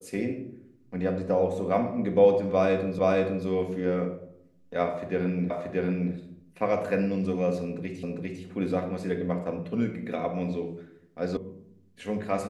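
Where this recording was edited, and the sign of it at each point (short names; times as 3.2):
2.99 repeat of the last 0.47 s
5.5 repeat of the last 0.63 s
8.03 repeat of the last 0.4 s
11.37 sound cut off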